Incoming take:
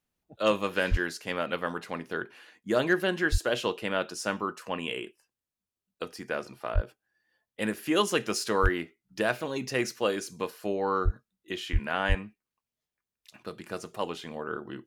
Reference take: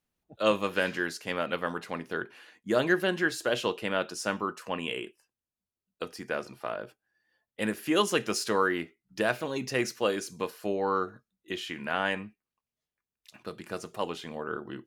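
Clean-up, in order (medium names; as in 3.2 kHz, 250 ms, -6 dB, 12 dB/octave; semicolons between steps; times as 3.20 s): clip repair -12 dBFS; de-plosive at 0.90/3.31/6.74/8.62/11.04/11.72/12.08 s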